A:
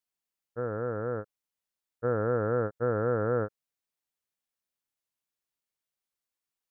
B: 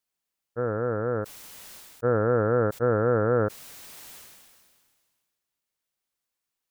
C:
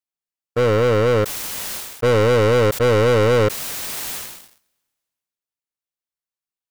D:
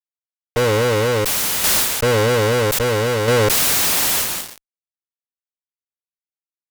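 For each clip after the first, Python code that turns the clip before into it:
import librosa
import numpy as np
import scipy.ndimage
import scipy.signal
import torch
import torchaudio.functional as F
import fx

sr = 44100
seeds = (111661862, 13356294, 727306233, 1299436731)

y1 = fx.sustainer(x, sr, db_per_s=31.0)
y1 = y1 * 10.0 ** (4.5 / 20.0)
y2 = fx.leveller(y1, sr, passes=5)
y3 = fx.fuzz(y2, sr, gain_db=41.0, gate_db=-45.0)
y3 = fx.tremolo_shape(y3, sr, shape='saw_down', hz=0.61, depth_pct=45)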